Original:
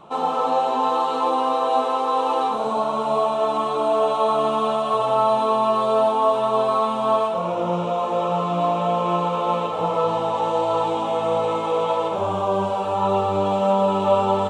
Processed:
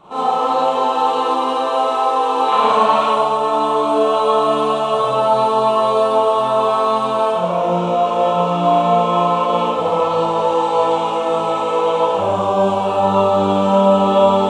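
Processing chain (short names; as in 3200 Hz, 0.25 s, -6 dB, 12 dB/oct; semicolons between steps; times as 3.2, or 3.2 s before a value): 2.48–3.09 bell 2100 Hz +13 dB 1.8 oct; Schroeder reverb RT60 0.81 s, combs from 30 ms, DRR -7 dB; gain -2 dB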